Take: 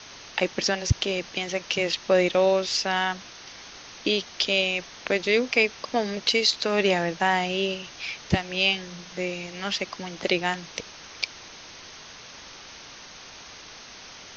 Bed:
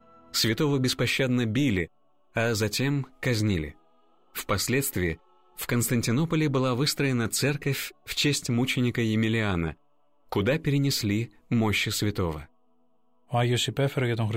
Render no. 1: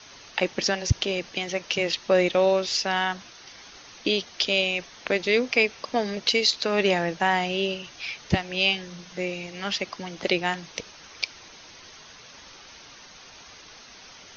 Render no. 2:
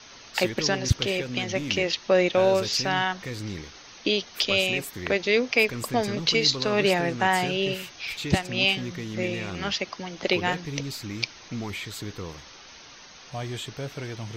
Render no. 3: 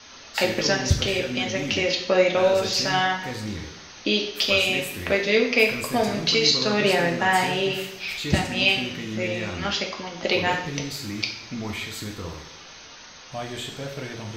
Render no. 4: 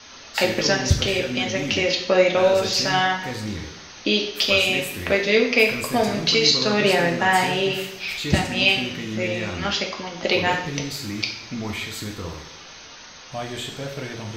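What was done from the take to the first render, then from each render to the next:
noise reduction 6 dB, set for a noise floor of -45 dBFS
add bed -9 dB
two-slope reverb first 0.64 s, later 1.8 s, DRR 0 dB
trim +2 dB; peak limiter -3 dBFS, peak gain reduction 1 dB

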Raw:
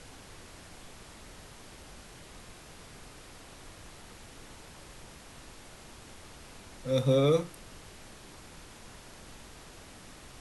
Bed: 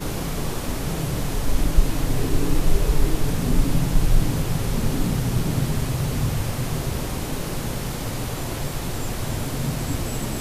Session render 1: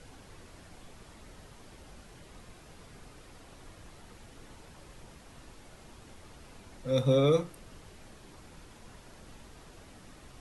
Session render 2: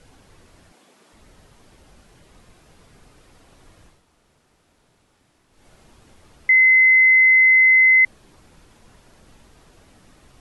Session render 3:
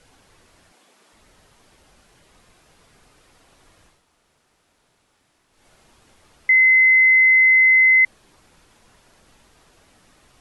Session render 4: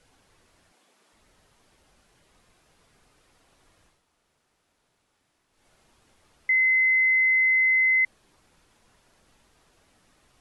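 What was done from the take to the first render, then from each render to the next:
noise reduction 6 dB, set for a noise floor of -51 dBFS
0.72–1.13 s: high-pass 210 Hz 24 dB/octave; 3.96–5.56 s: room tone, crossfade 0.24 s; 6.49–8.05 s: bleep 2.05 kHz -9.5 dBFS
bass shelf 460 Hz -7.5 dB
trim -7.5 dB

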